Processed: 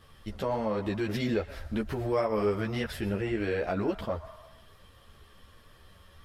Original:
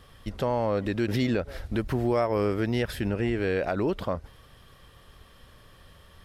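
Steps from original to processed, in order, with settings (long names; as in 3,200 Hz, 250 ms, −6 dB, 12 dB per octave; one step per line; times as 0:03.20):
on a send at −11 dB: Butterworth high-pass 630 Hz 96 dB per octave + convolution reverb RT60 1.2 s, pre-delay 116 ms
on the sum: string-ensemble chorus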